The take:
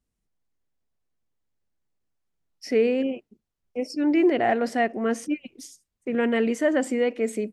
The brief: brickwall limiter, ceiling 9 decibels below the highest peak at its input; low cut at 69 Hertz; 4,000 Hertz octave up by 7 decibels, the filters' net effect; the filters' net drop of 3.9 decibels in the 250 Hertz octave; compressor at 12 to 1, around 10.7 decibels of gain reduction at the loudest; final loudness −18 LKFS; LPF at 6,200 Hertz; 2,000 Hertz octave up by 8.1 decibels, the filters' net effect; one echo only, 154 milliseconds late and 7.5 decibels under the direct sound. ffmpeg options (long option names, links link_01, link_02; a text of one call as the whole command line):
ffmpeg -i in.wav -af "highpass=69,lowpass=6200,equalizer=frequency=250:width_type=o:gain=-5,equalizer=frequency=2000:width_type=o:gain=7.5,equalizer=frequency=4000:width_type=o:gain=8,acompressor=threshold=-26dB:ratio=12,alimiter=level_in=1dB:limit=-24dB:level=0:latency=1,volume=-1dB,aecho=1:1:154:0.422,volume=16.5dB" out.wav